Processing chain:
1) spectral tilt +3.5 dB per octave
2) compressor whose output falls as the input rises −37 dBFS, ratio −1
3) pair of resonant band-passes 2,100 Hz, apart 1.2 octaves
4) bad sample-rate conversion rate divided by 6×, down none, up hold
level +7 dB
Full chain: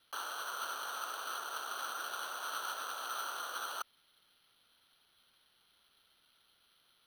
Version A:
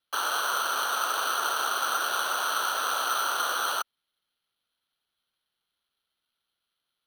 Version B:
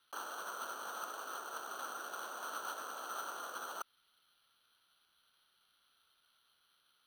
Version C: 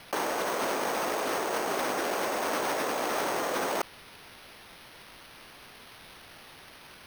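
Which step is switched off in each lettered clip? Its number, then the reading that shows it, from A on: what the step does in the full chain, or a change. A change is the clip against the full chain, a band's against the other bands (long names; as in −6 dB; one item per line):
2, change in integrated loudness +13.0 LU
1, 250 Hz band +7.0 dB
3, 250 Hz band +19.0 dB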